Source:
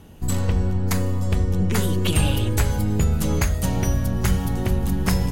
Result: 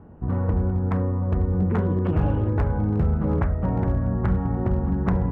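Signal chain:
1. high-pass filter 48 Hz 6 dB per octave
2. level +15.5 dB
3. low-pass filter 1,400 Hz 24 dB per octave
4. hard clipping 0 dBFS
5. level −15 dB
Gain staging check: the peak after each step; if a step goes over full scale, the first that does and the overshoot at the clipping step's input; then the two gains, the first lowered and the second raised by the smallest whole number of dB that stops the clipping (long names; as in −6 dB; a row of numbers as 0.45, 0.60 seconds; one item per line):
−8.5, +7.0, +5.0, 0.0, −15.0 dBFS
step 2, 5.0 dB
step 2 +10.5 dB, step 5 −10 dB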